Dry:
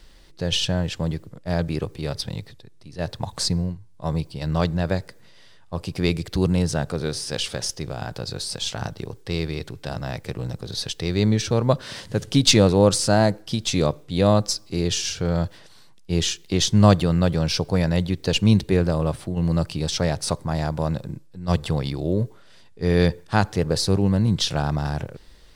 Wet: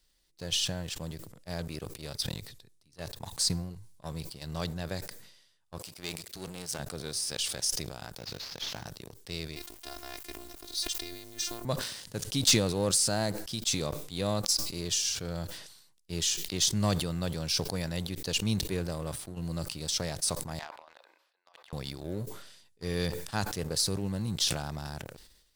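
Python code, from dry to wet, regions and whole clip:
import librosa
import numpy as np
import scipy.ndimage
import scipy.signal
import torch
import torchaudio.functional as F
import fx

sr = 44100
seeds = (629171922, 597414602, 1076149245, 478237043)

y = fx.chain(x, sr, fx.halfwave_gain(db=-7.0),
    fx.highpass(hz=290.0, slope=6), at=(5.78, 6.79))
y = fx.chain(y, sr, fx.cvsd(bps=32000),
    fx.quant_companded(bits=8), at=(8.18, 8.86))
y = fx.chain(y, sr, fx.robotise(hz=349.0),
    fx.over_compress(threshold_db=-28.0, ratio=-1.0),
    fx.quant_dither(seeds[0], bits=8, dither='none'), at=(9.56, 11.65))
y = fx.chain(y, sr, fx.cheby2_highpass(hz=160.0, order=4, stop_db=70),
    fx.over_compress(threshold_db=-35.0, ratio=-0.5),
    fx.air_absorb(metres=360.0), at=(20.59, 21.73))
y = scipy.signal.lfilter([1.0, -0.8], [1.0], y)
y = fx.leveller(y, sr, passes=2)
y = fx.sustainer(y, sr, db_per_s=61.0)
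y = F.gain(torch.from_numpy(y), -7.5).numpy()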